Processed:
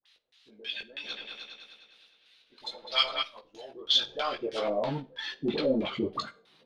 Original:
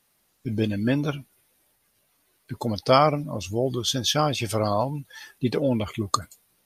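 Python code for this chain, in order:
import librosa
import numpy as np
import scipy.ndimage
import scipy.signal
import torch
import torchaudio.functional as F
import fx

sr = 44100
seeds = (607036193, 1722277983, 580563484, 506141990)

y = scipy.signal.sosfilt(scipy.signal.butter(2, 110.0, 'highpass', fs=sr, output='sos'), x)
y = fx.high_shelf(y, sr, hz=6000.0, db=-7.5)
y = fx.level_steps(y, sr, step_db=16)
y = fx.filter_sweep_highpass(y, sr, from_hz=2500.0, to_hz=190.0, start_s=3.37, end_s=5.03, q=0.73)
y = fx.power_curve(y, sr, exponent=0.7)
y = fx.dispersion(y, sr, late='highs', ms=57.0, hz=900.0)
y = fx.filter_lfo_lowpass(y, sr, shape='square', hz=3.1, low_hz=480.0, high_hz=3700.0, q=3.2)
y = fx.chorus_voices(y, sr, voices=6, hz=0.58, base_ms=18, depth_ms=4.8, mix_pct=40)
y = fx.echo_opening(y, sr, ms=102, hz=750, octaves=2, feedback_pct=70, wet_db=0, at=(1.03, 3.22), fade=0.02)
y = fx.rev_schroeder(y, sr, rt60_s=0.35, comb_ms=31, drr_db=17.0)
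y = y * 10.0 ** (1.5 / 20.0)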